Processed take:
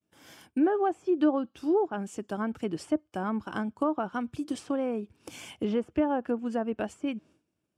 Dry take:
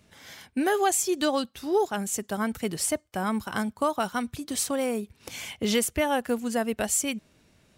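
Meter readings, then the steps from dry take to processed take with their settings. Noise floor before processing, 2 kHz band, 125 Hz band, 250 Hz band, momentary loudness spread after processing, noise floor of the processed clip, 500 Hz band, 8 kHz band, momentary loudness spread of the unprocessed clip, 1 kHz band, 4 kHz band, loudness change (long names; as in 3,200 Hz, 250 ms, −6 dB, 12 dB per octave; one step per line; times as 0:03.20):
−63 dBFS, −8.5 dB, −3.5 dB, +0.5 dB, 10 LU, −80 dBFS, −2.0 dB, −22.5 dB, 10 LU, −4.0 dB, −13.5 dB, −3.0 dB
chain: high-pass filter 86 Hz
treble cut that deepens with the level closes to 1,400 Hz, closed at −21.5 dBFS
downward expander −50 dBFS
thirty-one-band graphic EQ 315 Hz +10 dB, 2,000 Hz −9 dB, 4,000 Hz −10 dB, 6,300 Hz −4 dB
level −3.5 dB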